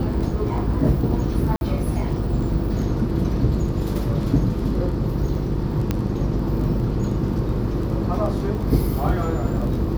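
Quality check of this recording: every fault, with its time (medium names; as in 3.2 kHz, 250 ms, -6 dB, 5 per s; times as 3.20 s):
buzz 50 Hz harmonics 10 -26 dBFS
crackle 14 per s
1.56–1.61 s: dropout 51 ms
5.91 s: pop -9 dBFS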